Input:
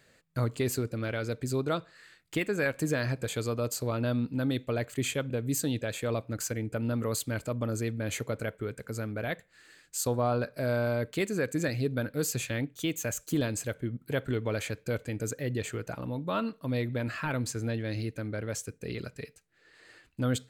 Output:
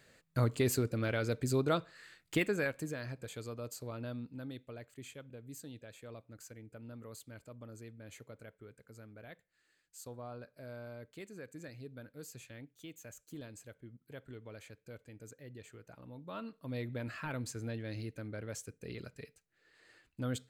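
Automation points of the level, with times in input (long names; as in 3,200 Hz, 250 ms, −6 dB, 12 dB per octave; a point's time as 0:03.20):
0:02.43 −1 dB
0:02.94 −12 dB
0:04.03 −12 dB
0:04.94 −18.5 dB
0:15.82 −18.5 dB
0:16.86 −8 dB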